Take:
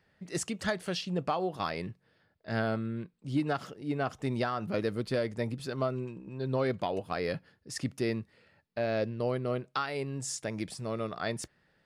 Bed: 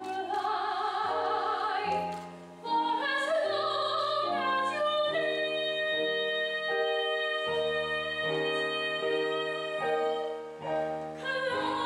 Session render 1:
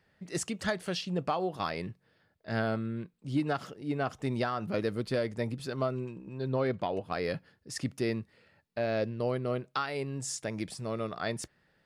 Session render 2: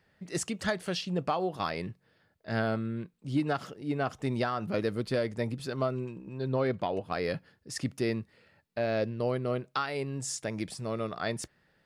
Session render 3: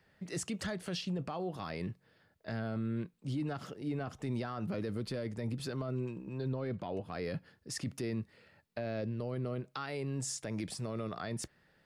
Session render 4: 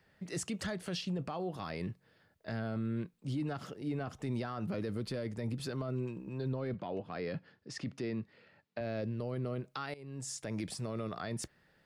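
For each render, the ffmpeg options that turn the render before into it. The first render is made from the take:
-filter_complex "[0:a]asettb=1/sr,asplit=3[a][b][c];[a]atrim=end=6.494[d];[b]atrim=start=6.49:end=7.12,asetpts=PTS-STARTPTS,afade=t=in:d=0.004:c=qsin,afade=t=out:st=0.626:d=0.004:c=qsin,lowpass=f=3.6k:p=1[e];[c]atrim=start=7.116[f];[d][e]acrossfade=d=0.004:c1=hsin:c2=qsin[g];[g][f]acrossfade=d=0.004:c1=qsin:c2=hsin"
-af "volume=1dB"
-filter_complex "[0:a]acrossover=split=310[a][b];[b]acompressor=threshold=-37dB:ratio=2.5[c];[a][c]amix=inputs=2:normalize=0,alimiter=level_in=4.5dB:limit=-24dB:level=0:latency=1:release=12,volume=-4.5dB"
-filter_complex "[0:a]asettb=1/sr,asplit=3[a][b][c];[a]atrim=end=6.744[d];[b]atrim=start=6.74:end=8.81,asetpts=PTS-STARTPTS,afade=t=in:d=0.004:c=qsin,afade=t=out:st=2.066:d=0.004:c=qsin,highpass=120,lowpass=4.7k[e];[c]atrim=start=8.806[f];[d][e]acrossfade=d=0.004:c1=hsin:c2=qsin[g];[g][f]acrossfade=d=0.004:c1=qsin:c2=hsin,asplit=2[h][i];[h]atrim=end=9.94,asetpts=PTS-STARTPTS,afade=t=out:st=9.936:d=0.004:c=hsin:silence=0.133352[j];[i]atrim=start=9.94,asetpts=PTS-STARTPTS,afade=t=in:d=0.55:silence=0.133352[k];[j][k]concat=n=2:v=0:a=1"

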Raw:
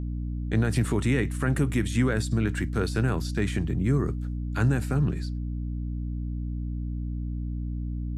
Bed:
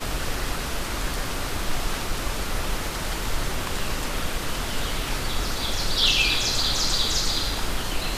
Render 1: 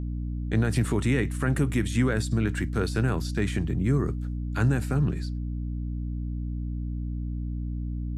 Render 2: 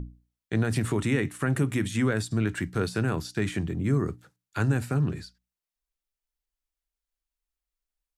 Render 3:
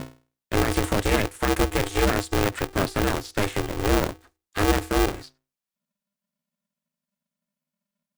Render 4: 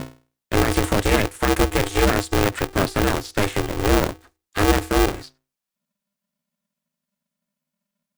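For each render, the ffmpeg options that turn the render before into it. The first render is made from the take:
-af anull
-af "bandreject=f=60:t=h:w=6,bandreject=f=120:t=h:w=6,bandreject=f=180:t=h:w=6,bandreject=f=240:t=h:w=6,bandreject=f=300:t=h:w=6"
-filter_complex "[0:a]asplit=2[a][b];[b]acrusher=bits=3:mix=0:aa=0.000001,volume=-6.5dB[c];[a][c]amix=inputs=2:normalize=0,aeval=exprs='val(0)*sgn(sin(2*PI*200*n/s))':c=same"
-af "volume=3.5dB"

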